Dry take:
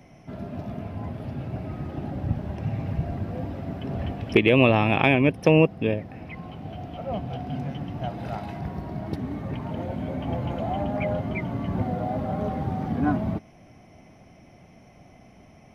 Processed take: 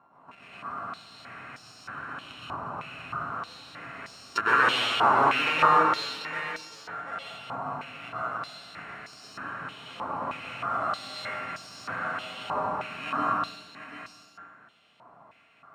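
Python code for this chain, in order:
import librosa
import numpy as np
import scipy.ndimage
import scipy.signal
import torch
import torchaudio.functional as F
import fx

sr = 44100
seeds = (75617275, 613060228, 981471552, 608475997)

p1 = np.r_[np.sort(x[:len(x) // 32 * 32].reshape(-1, 32), axis=1).ravel(), x[len(x) // 32 * 32:]]
p2 = fx.high_shelf(p1, sr, hz=2100.0, db=-12.0)
p3 = p2 + fx.echo_single(p2, sr, ms=742, db=-9.5, dry=0)
p4 = fx.rev_plate(p3, sr, seeds[0], rt60_s=1.3, hf_ratio=0.85, predelay_ms=105, drr_db=-7.0)
p5 = fx.filter_held_bandpass(p4, sr, hz=3.2, low_hz=980.0, high_hz=5100.0)
y = p5 * librosa.db_to_amplitude(6.0)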